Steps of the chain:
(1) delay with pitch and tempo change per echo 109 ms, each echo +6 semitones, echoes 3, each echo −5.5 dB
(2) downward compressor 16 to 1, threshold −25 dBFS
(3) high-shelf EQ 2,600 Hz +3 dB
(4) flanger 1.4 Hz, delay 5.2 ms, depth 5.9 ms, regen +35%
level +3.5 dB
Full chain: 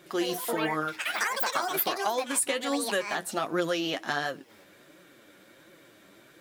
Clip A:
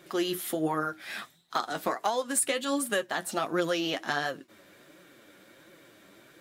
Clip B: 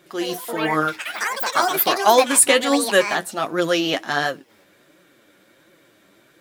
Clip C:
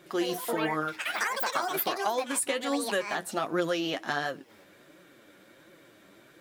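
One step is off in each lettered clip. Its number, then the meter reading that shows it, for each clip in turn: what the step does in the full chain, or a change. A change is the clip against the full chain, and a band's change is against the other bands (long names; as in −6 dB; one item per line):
1, change in momentary loudness spread +4 LU
2, average gain reduction 7.5 dB
3, change in integrated loudness −1.0 LU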